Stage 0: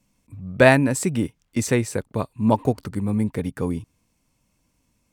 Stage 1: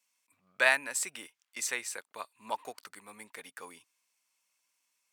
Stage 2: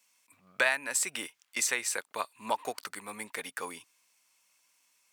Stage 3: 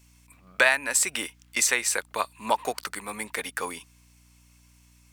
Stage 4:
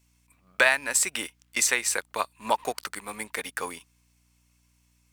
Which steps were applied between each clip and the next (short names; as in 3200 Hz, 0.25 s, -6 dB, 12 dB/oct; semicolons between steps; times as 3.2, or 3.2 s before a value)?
HPF 1300 Hz 12 dB/oct; gain -4 dB
compressor 3:1, threshold -35 dBFS, peak gain reduction 12.5 dB; gain +8.5 dB
hum 60 Hz, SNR 29 dB; gain +6.5 dB
G.711 law mismatch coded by A